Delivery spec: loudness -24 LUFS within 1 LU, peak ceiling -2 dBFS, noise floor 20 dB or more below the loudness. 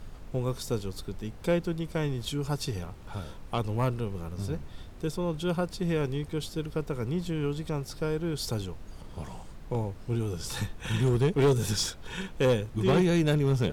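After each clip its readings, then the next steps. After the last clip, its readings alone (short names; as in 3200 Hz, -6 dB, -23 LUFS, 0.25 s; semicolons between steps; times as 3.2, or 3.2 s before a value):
clipped 0.6%; flat tops at -18.0 dBFS; noise floor -45 dBFS; noise floor target -50 dBFS; loudness -30.0 LUFS; peak -18.0 dBFS; loudness target -24.0 LUFS
-> clip repair -18 dBFS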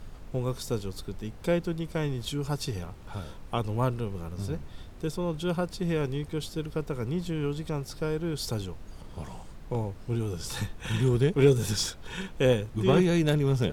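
clipped 0.0%; noise floor -45 dBFS; noise floor target -50 dBFS
-> noise print and reduce 6 dB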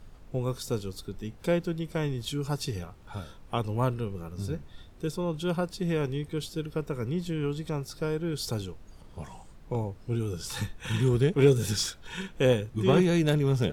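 noise floor -51 dBFS; loudness -29.5 LUFS; peak -9.0 dBFS; loudness target -24.0 LUFS
-> gain +5.5 dB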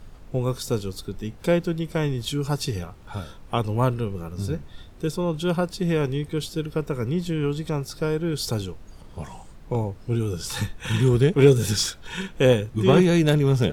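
loudness -24.0 LUFS; peak -3.5 dBFS; noise floor -45 dBFS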